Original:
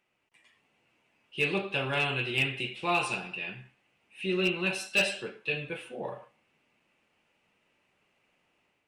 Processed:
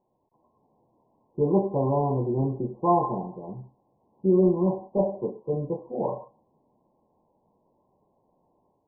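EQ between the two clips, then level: dynamic EQ 240 Hz, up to +4 dB, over -45 dBFS, Q 1.2; brick-wall FIR low-pass 1100 Hz; +8.0 dB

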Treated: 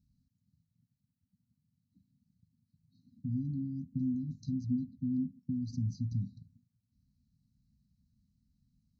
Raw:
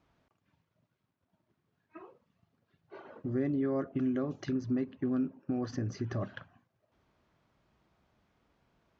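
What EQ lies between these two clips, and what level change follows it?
brick-wall FIR band-stop 270–3800 Hz; low shelf 400 Hz +9 dB; -5.5 dB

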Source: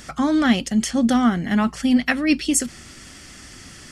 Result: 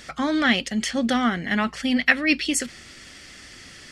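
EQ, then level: dynamic EQ 1900 Hz, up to +4 dB, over -34 dBFS, Q 0.72; ten-band EQ 500 Hz +6 dB, 2000 Hz +7 dB, 4000 Hz +7 dB; -7.0 dB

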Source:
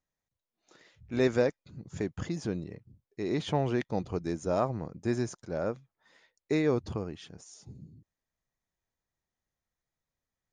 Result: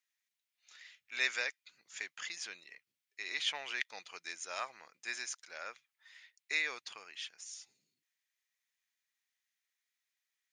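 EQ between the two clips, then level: resonant high-pass 2200 Hz, resonance Q 1.7; +3.5 dB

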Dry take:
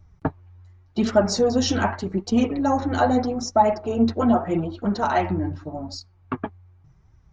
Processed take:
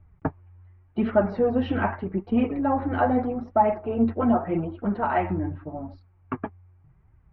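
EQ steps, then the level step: steep low-pass 2700 Hz 36 dB/oct; -2.5 dB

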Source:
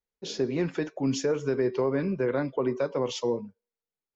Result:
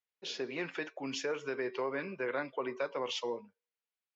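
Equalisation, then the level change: band-pass 1900 Hz, Q 0.6; bell 2700 Hz +4.5 dB 0.74 oct; -1.0 dB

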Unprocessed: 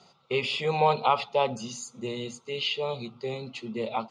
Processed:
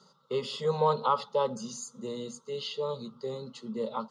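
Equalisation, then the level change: fixed phaser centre 480 Hz, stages 8; 0.0 dB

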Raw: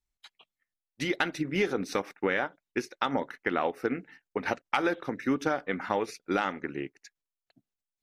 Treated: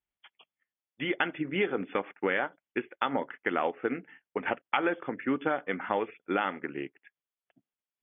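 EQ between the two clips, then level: HPF 190 Hz 6 dB/oct; brick-wall FIR low-pass 3500 Hz; 0.0 dB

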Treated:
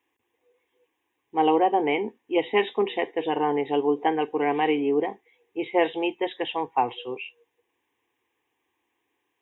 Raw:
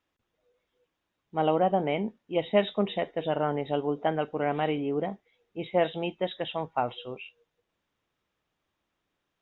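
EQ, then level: HPF 160 Hz 12 dB/oct; fixed phaser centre 910 Hz, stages 8; +8.0 dB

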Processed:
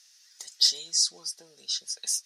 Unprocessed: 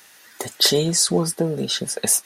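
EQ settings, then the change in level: band-pass 5400 Hz, Q 3.5; 0.0 dB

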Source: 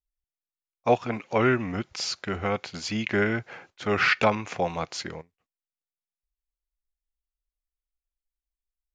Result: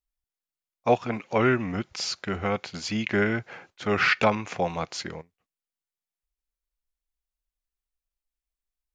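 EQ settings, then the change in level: bell 190 Hz +2 dB 0.41 oct; 0.0 dB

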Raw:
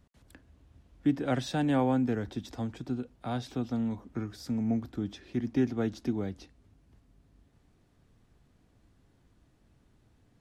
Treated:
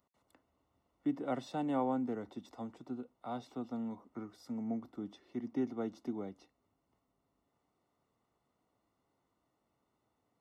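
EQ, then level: dynamic EQ 220 Hz, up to +7 dB, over -41 dBFS, Q 0.74; polynomial smoothing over 65 samples; differentiator; +14.5 dB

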